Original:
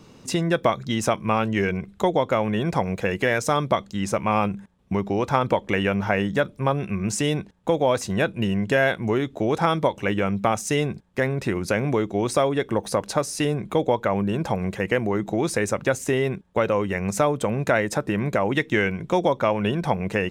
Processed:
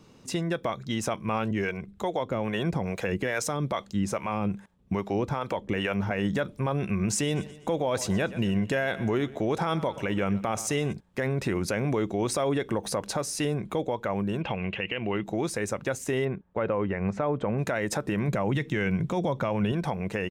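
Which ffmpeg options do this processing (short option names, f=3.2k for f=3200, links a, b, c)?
-filter_complex "[0:a]asettb=1/sr,asplit=3[a][b][c];[a]atrim=end=1.514[d];[b]atrim=start=1.51:end=6.11,asetpts=PTS-STARTPTS,afade=t=in:d=0.004:c=qsin,afade=t=out:st=4.596:d=0.004:c=qsin,acrossover=split=440[e][f];[e]aeval=exprs='val(0)*(1-0.7/2+0.7/2*cos(2*PI*2.4*n/s))':c=same[g];[f]aeval=exprs='val(0)*(1-0.7/2-0.7/2*cos(2*PI*2.4*n/s))':c=same[h];[g][h]amix=inputs=2:normalize=0[i];[c]atrim=start=6.106[j];[d][i]acrossfade=d=0.004:c1=hsin:c2=qsin[k];[k][j]acrossfade=d=0.004:c1=qsin:c2=hsin,asplit=3[l][m][n];[l]afade=t=out:st=7.27:d=0.02[o];[m]aecho=1:1:123|246|369|492:0.0891|0.0446|0.0223|0.0111,afade=t=in:st=7.27:d=0.02,afade=t=out:st=10.92:d=0.02[p];[n]afade=t=in:st=10.92:d=0.02[q];[o][p][q]amix=inputs=3:normalize=0,asettb=1/sr,asplit=3[r][s][t];[r]atrim=end=14.414[u];[s]atrim=start=14.41:end=15.24,asetpts=PTS-STARTPTS,afade=t=in:d=0.004:c=qsin,afade=t=out:st=0.826:d=0.004:c=qsin,lowpass=f=2.8k:t=q:w=9.7[v];[t]atrim=start=15.236[w];[u][v]acrossfade=d=0.004:c1=hsin:c2=qsin[x];[x][w]acrossfade=d=0.004:c1=qsin:c2=hsin,asplit=3[y][z][aa];[y]afade=t=out:st=16.24:d=0.02[ab];[z]lowpass=2k,afade=t=in:st=16.24:d=0.02,afade=t=out:st=17.57:d=0.02[ac];[aa]afade=t=in:st=17.57:d=0.02[ad];[ab][ac][ad]amix=inputs=3:normalize=0,asettb=1/sr,asplit=3[ae][af][ag];[ae]atrim=end=18.284[ah];[af]atrim=start=18.28:end=19.72,asetpts=PTS-STARTPTS,afade=t=in:d=0.004:c=qsin,afade=t=out:st=1.436:d=0.004:c=qsin,equalizer=f=140:w=1.4:g=9[ai];[ag]atrim=start=19.716[aj];[ah][ai]acrossfade=d=0.004:c1=hsin:c2=qsin[ak];[ak][aj]acrossfade=d=0.004:c1=qsin:c2=hsin,dynaudnorm=f=350:g=9:m=11.5dB,alimiter=limit=-12dB:level=0:latency=1:release=64,volume=-6dB"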